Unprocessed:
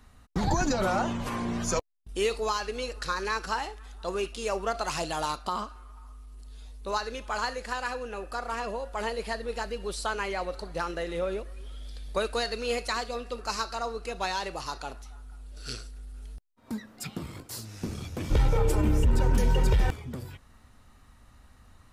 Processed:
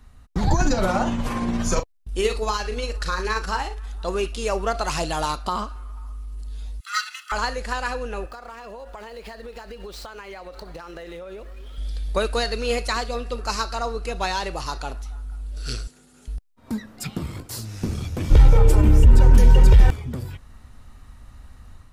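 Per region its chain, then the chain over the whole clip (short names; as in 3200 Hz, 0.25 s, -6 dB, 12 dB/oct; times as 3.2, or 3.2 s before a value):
0.55–3.87 doubler 38 ms -9 dB + tremolo 17 Hz, depth 34%
6.8–7.32 minimum comb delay 0.68 ms + steep high-pass 1200 Hz 48 dB/oct + comb 1.5 ms, depth 95%
8.26–11.78 median filter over 5 samples + low shelf 160 Hz -11 dB + compressor 16:1, threshold -39 dBFS
15.87–16.28 HPF 150 Hz 24 dB/oct + bell 7000 Hz +9.5 dB 0.27 oct
whole clip: low shelf 110 Hz +9 dB; AGC gain up to 5 dB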